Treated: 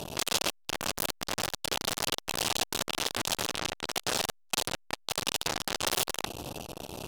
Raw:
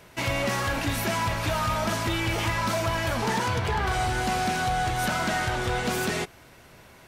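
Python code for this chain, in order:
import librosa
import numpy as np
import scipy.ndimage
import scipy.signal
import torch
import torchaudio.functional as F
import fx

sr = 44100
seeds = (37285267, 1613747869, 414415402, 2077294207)

y = fx.fold_sine(x, sr, drive_db=12, ceiling_db=-18.0)
y = fx.brickwall_bandstop(y, sr, low_hz=930.0, high_hz=2500.0)
y = fx.transformer_sat(y, sr, knee_hz=3800.0)
y = F.gain(torch.from_numpy(y), 3.0).numpy()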